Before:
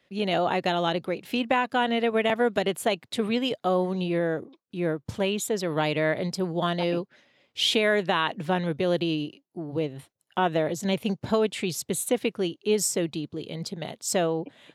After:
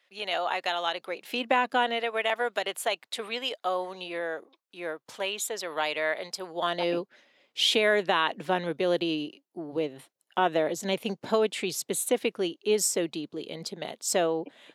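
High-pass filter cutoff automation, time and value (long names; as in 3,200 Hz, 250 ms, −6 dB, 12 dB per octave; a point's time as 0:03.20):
0:00.96 790 Hz
0:01.68 240 Hz
0:02.06 680 Hz
0:06.46 680 Hz
0:06.91 280 Hz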